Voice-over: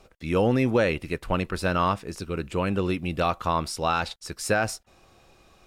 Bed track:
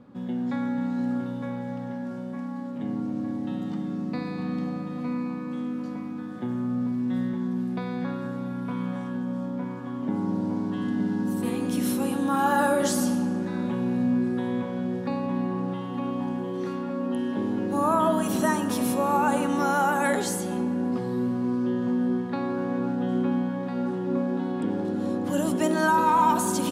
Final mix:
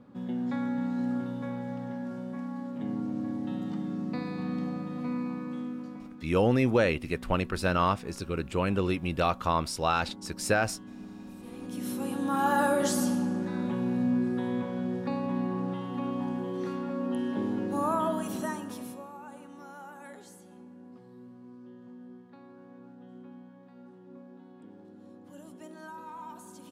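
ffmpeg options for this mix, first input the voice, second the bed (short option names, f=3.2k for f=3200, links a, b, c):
-filter_complex "[0:a]adelay=6000,volume=-2dB[a];[1:a]volume=12dB,afade=t=out:st=5.41:d=0.93:silence=0.177828,afade=t=in:st=11.46:d=1.02:silence=0.177828,afade=t=out:st=17.45:d=1.67:silence=0.1[b];[a][b]amix=inputs=2:normalize=0"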